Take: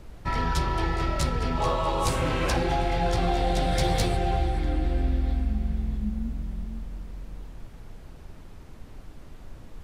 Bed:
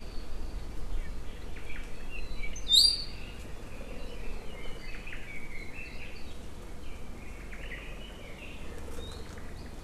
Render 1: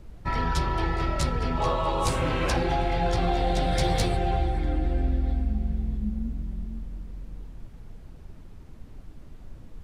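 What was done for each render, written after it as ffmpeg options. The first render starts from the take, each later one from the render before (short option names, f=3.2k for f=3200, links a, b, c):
-af "afftdn=nr=6:nf=-45"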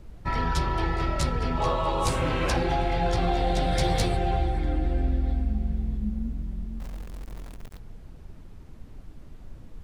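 -filter_complex "[0:a]asettb=1/sr,asplit=3[a][b][c];[a]atrim=end=6.804[d];[b]atrim=start=6.8:end=7.79,asetpts=PTS-STARTPTS,afade=t=in:d=0.004:c=qsin,afade=t=out:st=0.986:d=0.004:c=qsin,acrusher=bits=8:dc=4:mix=0:aa=0.000001[e];[c]atrim=start=7.786[f];[d][e]acrossfade=d=0.004:c1=hsin:c2=qsin[g];[g][f]acrossfade=d=0.004:c1=qsin:c2=hsin"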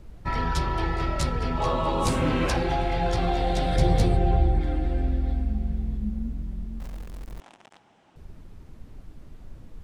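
-filter_complex "[0:a]asettb=1/sr,asplit=3[a][b][c];[a]atrim=end=1.734[d];[b]atrim=start=1.73:end=2.47,asetpts=PTS-STARTPTS,afade=t=in:d=0.004:c=qsin,afade=t=out:st=0.736:d=0.004:c=qsin,equalizer=f=230:t=o:w=0.77:g=10[e];[c]atrim=start=2.466[f];[d][e]acrossfade=d=0.004:c1=hsin:c2=qsin[g];[g][f]acrossfade=d=0.004:c1=qsin:c2=hsin,asettb=1/sr,asplit=3[h][i][j];[h]atrim=end=3.764[k];[i]atrim=start=3.76:end=4.61,asetpts=PTS-STARTPTS,afade=t=in:d=0.004:c=qsin,afade=t=out:st=0.846:d=0.004:c=qsin,tiltshelf=f=690:g=5.5[l];[j]atrim=start=4.606[m];[k][l]acrossfade=d=0.004:c1=hsin:c2=qsin[n];[n][m]acrossfade=d=0.004:c1=qsin:c2=hsin,asettb=1/sr,asplit=3[o][p][q];[o]atrim=end=7.404[r];[p]atrim=start=7.4:end=8.16,asetpts=PTS-STARTPTS,afade=t=in:d=0.004:c=qsin,afade=t=out:st=0.756:d=0.004:c=qsin,highpass=390,equalizer=f=450:t=q:w=4:g=-8,equalizer=f=820:t=q:w=4:g=7,equalizer=f=3k:t=q:w=4:g=4,equalizer=f=4.5k:t=q:w=4:g=-6,equalizer=f=6.7k:t=q:w=4:g=-3,lowpass=f=7.9k:w=0.5412,lowpass=f=7.9k:w=1.3066[s];[q]atrim=start=8.156[t];[r][s]acrossfade=d=0.004:c1=hsin:c2=qsin[u];[u][t]acrossfade=d=0.004:c1=qsin:c2=hsin"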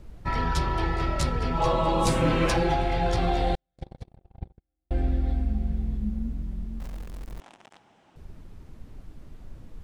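-filter_complex "[0:a]asettb=1/sr,asplit=3[a][b][c];[a]atrim=end=1.534[d];[b]atrim=start=1.53:end=2.74,asetpts=PTS-STARTPTS,afade=t=in:d=0.004:c=qsin,afade=t=out:st=1.206:d=0.004:c=qsin,aecho=1:1:6:0.53,atrim=end_sample=53361[e];[c]atrim=start=2.736[f];[d][e]acrossfade=d=0.004:c1=hsin:c2=qsin[g];[g][f]acrossfade=d=0.004:c1=qsin:c2=hsin,asettb=1/sr,asplit=3[h][i][j];[h]atrim=end=3.554[k];[i]atrim=start=3.55:end=4.91,asetpts=PTS-STARTPTS,afade=t=in:d=0.004:c=qsin,afade=t=out:st=1.356:d=0.004:c=qsin,agate=range=-59dB:threshold=-15dB:ratio=16:release=100:detection=peak[l];[j]atrim=start=4.906[m];[k][l]acrossfade=d=0.004:c1=hsin:c2=qsin[n];[n][m]acrossfade=d=0.004:c1=qsin:c2=hsin"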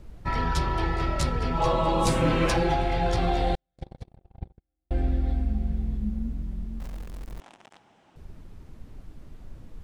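-af anull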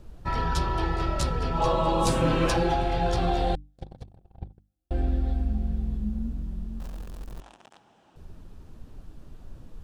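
-af "equalizer=f=2.1k:w=5.1:g=-7.5,bandreject=f=50:t=h:w=6,bandreject=f=100:t=h:w=6,bandreject=f=150:t=h:w=6,bandreject=f=200:t=h:w=6,bandreject=f=250:t=h:w=6,bandreject=f=300:t=h:w=6"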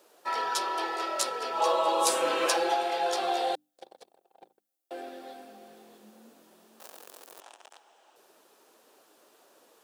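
-af "highpass=f=420:w=0.5412,highpass=f=420:w=1.3066,highshelf=f=6.6k:g=11"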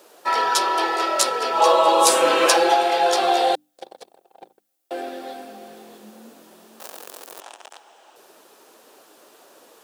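-af "volume=10dB,alimiter=limit=-1dB:level=0:latency=1"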